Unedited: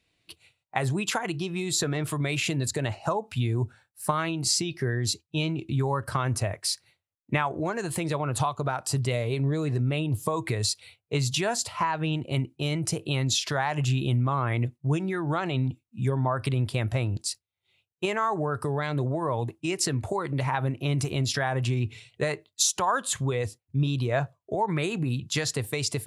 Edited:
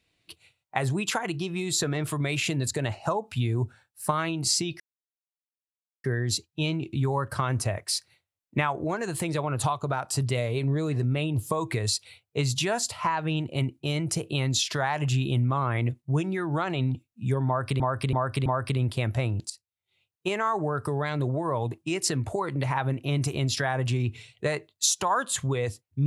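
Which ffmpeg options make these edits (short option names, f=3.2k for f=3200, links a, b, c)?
-filter_complex "[0:a]asplit=6[a][b][c][d][e][f];[a]atrim=end=4.8,asetpts=PTS-STARTPTS,afade=t=out:st=4.796:d=0.004:c=hsin,apad=pad_dur=1.24[g];[b]atrim=start=4.8:end=16.562,asetpts=PTS-STARTPTS,afade=t=in:d=0.004:c=hsin[h];[c]atrim=start=16.228:end=16.562[i];[d]atrim=start=16.228:end=16.562[j];[e]atrim=start=16.228:end=17.27,asetpts=PTS-STARTPTS,afade=t=out:st=1.038:d=0.004:c=hsin:silence=0.149624[k];[f]atrim=start=17.27,asetpts=PTS-STARTPTS,afade=t=in:d=1.07:c=qsin:silence=0.149624[l];[g][h]concat=n=2:v=0:a=1[m];[m][i]acrossfade=d=0.004:c1=hsin:c2=hsin[n];[n][j]acrossfade=d=0.004:c1=hsin:c2=hsin[o];[k][l]concat=n=2:v=0:a=1[p];[o][p]acrossfade=d=0.004:c1=hsin:c2=hsin"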